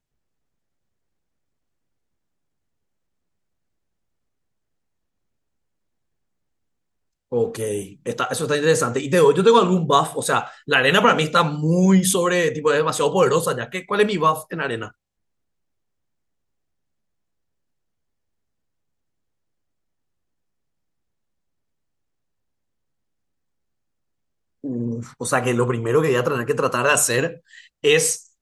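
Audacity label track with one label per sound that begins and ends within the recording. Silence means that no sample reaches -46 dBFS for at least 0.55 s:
7.320000	14.910000	sound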